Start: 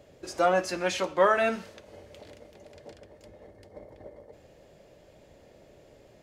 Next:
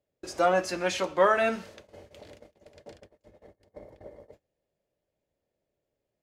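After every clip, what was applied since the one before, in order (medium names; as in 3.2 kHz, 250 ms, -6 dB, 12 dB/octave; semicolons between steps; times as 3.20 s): gate -49 dBFS, range -28 dB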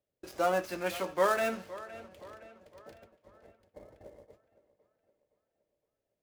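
dead-time distortion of 0.072 ms; tape echo 515 ms, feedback 49%, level -16 dB, low-pass 4.7 kHz; trim -5 dB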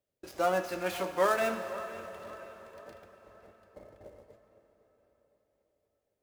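plate-style reverb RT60 4.8 s, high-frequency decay 0.85×, DRR 9 dB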